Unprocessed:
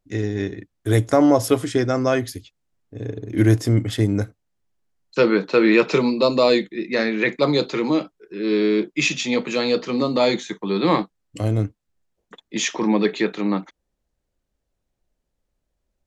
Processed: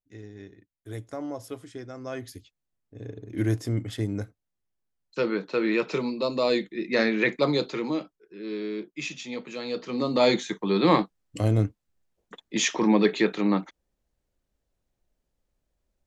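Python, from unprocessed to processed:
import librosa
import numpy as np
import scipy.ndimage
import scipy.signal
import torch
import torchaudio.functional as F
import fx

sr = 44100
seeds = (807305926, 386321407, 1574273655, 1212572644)

y = fx.gain(x, sr, db=fx.line((1.96, -19.5), (2.36, -9.5), (6.3, -9.5), (7.03, -1.5), (8.59, -13.5), (9.59, -13.5), (10.28, -1.5)))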